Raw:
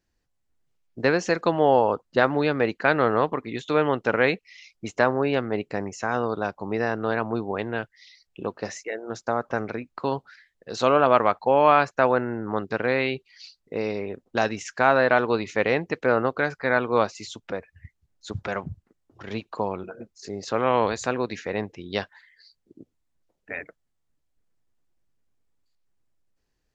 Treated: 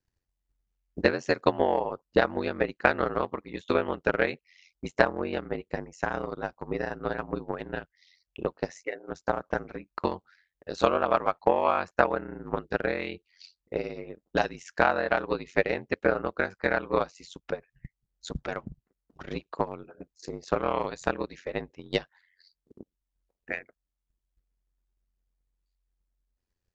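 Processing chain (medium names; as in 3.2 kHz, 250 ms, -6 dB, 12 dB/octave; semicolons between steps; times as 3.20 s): transient shaper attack +11 dB, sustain -2 dB; ring modulator 45 Hz; trim -6.5 dB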